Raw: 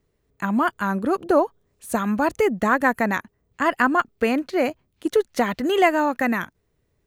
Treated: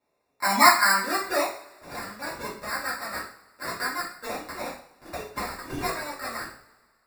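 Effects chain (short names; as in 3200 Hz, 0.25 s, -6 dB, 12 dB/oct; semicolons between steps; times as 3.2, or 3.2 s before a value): band-pass sweep 900 Hz -> 5300 Hz, 0.49–2.11; sample-and-hold 14×; two-slope reverb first 0.44 s, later 1.8 s, from -22 dB, DRR -9.5 dB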